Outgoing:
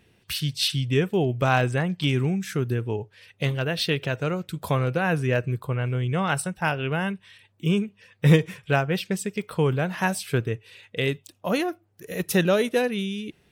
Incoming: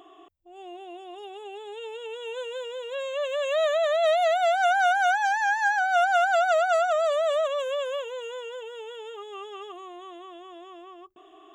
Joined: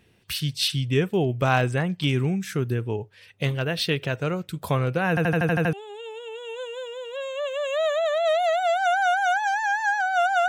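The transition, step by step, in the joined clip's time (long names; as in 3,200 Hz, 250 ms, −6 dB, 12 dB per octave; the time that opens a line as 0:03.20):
outgoing
0:05.09: stutter in place 0.08 s, 8 plays
0:05.73: continue with incoming from 0:01.51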